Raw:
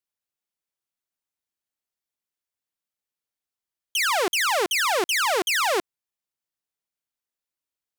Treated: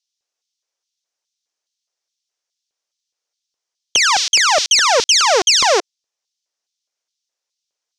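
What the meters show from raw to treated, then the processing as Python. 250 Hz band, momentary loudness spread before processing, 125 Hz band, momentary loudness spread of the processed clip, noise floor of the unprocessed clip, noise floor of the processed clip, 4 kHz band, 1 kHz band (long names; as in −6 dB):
+0.5 dB, 3 LU, can't be measured, 4 LU, below −85 dBFS, −83 dBFS, +12.5 dB, +7.5 dB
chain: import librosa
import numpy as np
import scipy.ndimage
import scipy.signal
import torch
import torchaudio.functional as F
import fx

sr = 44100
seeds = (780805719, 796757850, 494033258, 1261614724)

y = fx.lowpass_res(x, sr, hz=5900.0, q=3.3)
y = fx.filter_lfo_highpass(y, sr, shape='square', hz=2.4, low_hz=490.0, high_hz=3600.0, q=1.7)
y = y * librosa.db_to_amplitude(6.0)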